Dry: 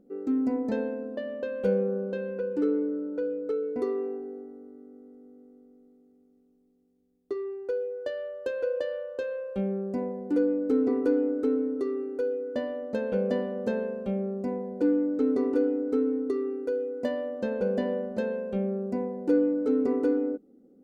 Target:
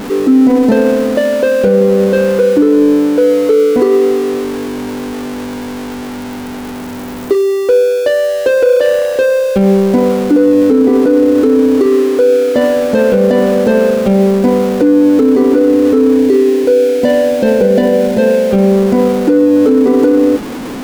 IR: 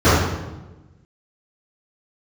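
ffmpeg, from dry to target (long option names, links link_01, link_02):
-filter_complex "[0:a]aeval=exprs='val(0)+0.5*0.0119*sgn(val(0))':channel_layout=same,asettb=1/sr,asplit=3[link_01][link_02][link_03];[link_01]atrim=end=16.184[link_04];[link_02]atrim=start=16.18:end=18.51,asetpts=PTS-STARTPTS,afade=type=in:duration=0.004:curve=qsin,afade=type=out:start_time=2.326:duration=0.004:curve=qsin,equalizer=frequency=1200:width_type=o:width=0.34:gain=-13[link_05];[link_03]atrim=start=18.506[link_06];[link_04][link_05]acrossfade=duration=0.004:curve1=hsin:curve2=qsin[link_07];[link_07][link_06]acrossfade=duration=0.004:curve1=qsin:curve2=hsin,alimiter=level_in=21.5dB:limit=-1dB:release=50:level=0:latency=1,volume=-1dB"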